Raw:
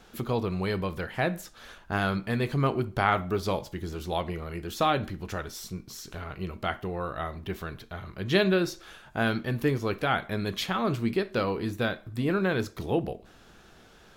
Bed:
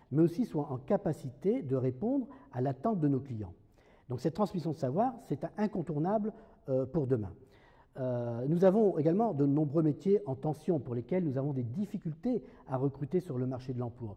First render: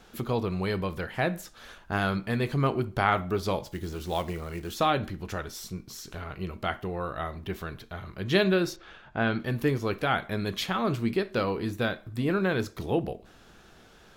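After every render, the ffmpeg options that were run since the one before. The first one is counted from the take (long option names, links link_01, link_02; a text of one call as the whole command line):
ffmpeg -i in.wav -filter_complex "[0:a]asettb=1/sr,asplit=3[link_01][link_02][link_03];[link_01]atrim=end=3.654[link_04];[link_02]atrim=start=3.65:end=4.72,asetpts=PTS-STARTPTS,afade=type=in:duration=0.004:curve=qsin,afade=type=out:start_time=1.066:duration=0.004:curve=qsin,acrusher=bits=5:mode=log:mix=0:aa=0.000001[link_05];[link_03]atrim=start=4.716[link_06];[link_04][link_05]acrossfade=duration=0.004:curve1=hsin:curve2=qsin[link_07];[link_07][link_06]acrossfade=duration=0.004:curve1=qsin:curve2=hsin,asettb=1/sr,asplit=3[link_08][link_09][link_10];[link_08]atrim=end=8.764[link_11];[link_09]atrim=start=8.76:end=9.4,asetpts=PTS-STARTPTS,afade=type=in:duration=0.004:curve=qsin,afade=type=out:start_time=0.636:duration=0.004:curve=qsin,lowpass=3400[link_12];[link_10]atrim=start=9.396[link_13];[link_11][link_12]acrossfade=duration=0.004:curve1=hsin:curve2=qsin[link_14];[link_14][link_13]acrossfade=duration=0.004:curve1=qsin:curve2=hsin" out.wav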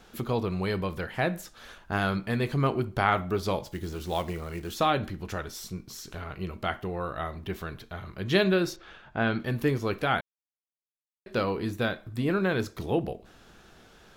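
ffmpeg -i in.wav -filter_complex "[0:a]asplit=3[link_01][link_02][link_03];[link_01]atrim=end=10.21,asetpts=PTS-STARTPTS,afade=type=out:start_time=10.206:duration=0.004:curve=hsin[link_04];[link_02]atrim=start=10.21:end=11.26,asetpts=PTS-STARTPTS,volume=0[link_05];[link_03]atrim=start=11.26,asetpts=PTS-STARTPTS,afade=type=in:duration=0.004:curve=hsin[link_06];[link_04][link_05][link_06]concat=n=3:v=0:a=1" out.wav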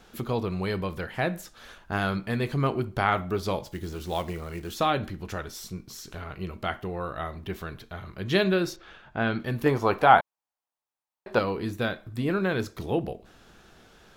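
ffmpeg -i in.wav -filter_complex "[0:a]asettb=1/sr,asplit=3[link_01][link_02][link_03];[link_01]atrim=end=9.664[link_04];[link_02]atrim=start=9.66:end=11.39,asetpts=PTS-STARTPTS,afade=type=in:duration=0.004:curve=qsin,afade=type=out:start_time=1.726:duration=0.004:curve=qsin,equalizer=frequency=860:width=1.1:gain=15[link_05];[link_03]atrim=start=11.386[link_06];[link_04][link_05]acrossfade=duration=0.004:curve1=hsin:curve2=qsin[link_07];[link_07][link_06]acrossfade=duration=0.004:curve1=qsin:curve2=hsin" out.wav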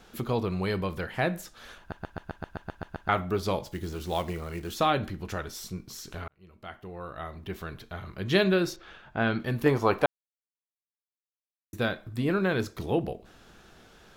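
ffmpeg -i in.wav -filter_complex "[0:a]asplit=14[link_01][link_02][link_03][link_04][link_05][link_06][link_07][link_08][link_09][link_10][link_11][link_12][link_13][link_14];[link_01]atrim=end=1.922[link_15];[link_02]atrim=start=1.788:end=1.922[link_16];[link_03]atrim=start=1.788:end=1.922[link_17];[link_04]atrim=start=1.788:end=1.922[link_18];[link_05]atrim=start=1.788:end=1.922[link_19];[link_06]atrim=start=1.788:end=1.922[link_20];[link_07]atrim=start=1.788:end=1.922[link_21];[link_08]atrim=start=1.788:end=1.922[link_22];[link_09]atrim=start=1.788:end=1.922[link_23];[link_10]atrim=start=1.788:end=1.922[link_24];[link_11]atrim=start=3.088:end=6.28,asetpts=PTS-STARTPTS,afade=type=out:start_time=3.188:duration=0.004:curve=hsin[link_25];[link_12]atrim=start=6.28:end=10.06,asetpts=PTS-STARTPTS,afade=type=in:duration=1.64,afade=type=out:start_time=3.776:duration=0.004:curve=hsin[link_26];[link_13]atrim=start=10.06:end=11.73,asetpts=PTS-STARTPTS,volume=0[link_27];[link_14]atrim=start=11.73,asetpts=PTS-STARTPTS,afade=type=in:duration=0.004:curve=hsin[link_28];[link_15][link_16]acrossfade=duration=0.004:curve1=hsin:curve2=hsin[link_29];[link_29][link_17]acrossfade=duration=0.004:curve1=hsin:curve2=hsin[link_30];[link_30][link_18]acrossfade=duration=0.004:curve1=hsin:curve2=hsin[link_31];[link_31][link_19]acrossfade=duration=0.004:curve1=hsin:curve2=hsin[link_32];[link_32][link_20]acrossfade=duration=0.004:curve1=hsin:curve2=hsin[link_33];[link_33][link_21]acrossfade=duration=0.004:curve1=hsin:curve2=hsin[link_34];[link_34][link_22]acrossfade=duration=0.004:curve1=hsin:curve2=hsin[link_35];[link_35][link_23]acrossfade=duration=0.004:curve1=hsin:curve2=hsin[link_36];[link_36][link_24]acrossfade=duration=0.004:curve1=hsin:curve2=hsin[link_37];[link_25][link_26][link_27][link_28]concat=n=4:v=0:a=1[link_38];[link_37][link_38]acrossfade=duration=0.004:curve1=hsin:curve2=hsin" out.wav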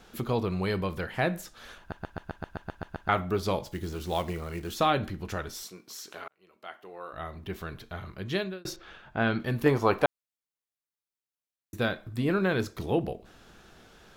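ffmpeg -i in.wav -filter_complex "[0:a]asettb=1/sr,asplit=3[link_01][link_02][link_03];[link_01]atrim=end=5.634[link_04];[link_02]atrim=start=5.63:end=7.13,asetpts=PTS-STARTPTS,afade=type=in:duration=0.004:curve=qsin,afade=type=out:start_time=1.496:duration=0.004:curve=qsin,highpass=400[link_05];[link_03]atrim=start=7.126[link_06];[link_04][link_05]acrossfade=duration=0.004:curve1=hsin:curve2=qsin[link_07];[link_07][link_06]acrossfade=duration=0.004:curve1=qsin:curve2=hsin,asplit=2[link_08][link_09];[link_08]atrim=end=8.65,asetpts=PTS-STARTPTS,afade=type=out:start_time=8.03:duration=0.62[link_10];[link_09]atrim=start=8.65,asetpts=PTS-STARTPTS,afade=type=in:duration=0.004:curve=hsin[link_11];[link_10][link_11]concat=n=2:v=0:a=1" out.wav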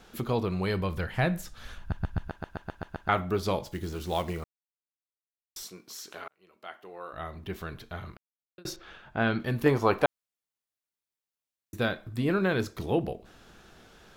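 ffmpeg -i in.wav -filter_complex "[0:a]asettb=1/sr,asplit=3[link_01][link_02][link_03];[link_01]atrim=end=0.624[link_04];[link_02]atrim=start=0.62:end=2.28,asetpts=PTS-STARTPTS,afade=type=in:duration=0.004:curve=qsin,afade=type=out:start_time=1.656:duration=0.004:curve=qsin,asubboost=boost=12:cutoff=160[link_05];[link_03]atrim=start=2.276[link_06];[link_04][link_05]acrossfade=duration=0.004:curve1=hsin:curve2=qsin[link_07];[link_07][link_06]acrossfade=duration=0.004:curve1=qsin:curve2=hsin,asplit=5[link_08][link_09][link_10][link_11][link_12];[link_08]atrim=end=4.44,asetpts=PTS-STARTPTS,afade=type=out:start_time=4.436:duration=0.004:curve=hsin[link_13];[link_09]atrim=start=4.44:end=5.56,asetpts=PTS-STARTPTS,volume=0[link_14];[link_10]atrim=start=5.56:end=8.17,asetpts=PTS-STARTPTS,afade=type=in:duration=0.004:curve=hsin,afade=type=out:start_time=2.606:duration=0.004:curve=hsin[link_15];[link_11]atrim=start=8.17:end=8.58,asetpts=PTS-STARTPTS,volume=0[link_16];[link_12]atrim=start=8.58,asetpts=PTS-STARTPTS,afade=type=in:duration=0.004:curve=hsin[link_17];[link_13][link_14][link_15][link_16][link_17]concat=n=5:v=0:a=1" out.wav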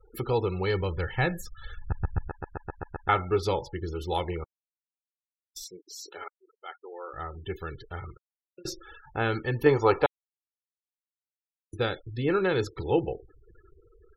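ffmpeg -i in.wav -af "aecho=1:1:2.3:0.64,afftfilt=real='re*gte(hypot(re,im),0.00891)':imag='im*gte(hypot(re,im),0.00891)':win_size=1024:overlap=0.75" out.wav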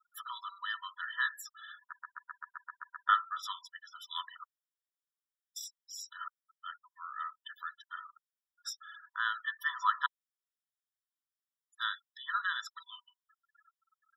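ffmpeg -i in.wav -af "aeval=exprs='0.447*(cos(1*acos(clip(val(0)/0.447,-1,1)))-cos(1*PI/2))+0.00447*(cos(2*acos(clip(val(0)/0.447,-1,1)))-cos(2*PI/2))':channel_layout=same,afftfilt=real='re*eq(mod(floor(b*sr/1024/980),2),1)':imag='im*eq(mod(floor(b*sr/1024/980),2),1)':win_size=1024:overlap=0.75" out.wav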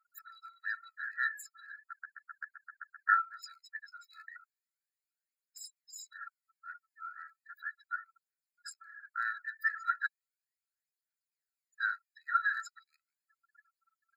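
ffmpeg -i in.wav -af "aphaser=in_gain=1:out_gain=1:delay=2.4:decay=0.64:speed=0.36:type=triangular,afftfilt=real='re*eq(mod(floor(b*sr/1024/1300),2),1)':imag='im*eq(mod(floor(b*sr/1024/1300),2),1)':win_size=1024:overlap=0.75" out.wav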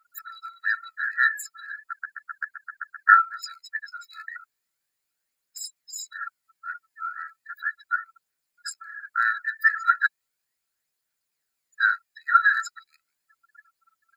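ffmpeg -i in.wav -af "volume=12dB" out.wav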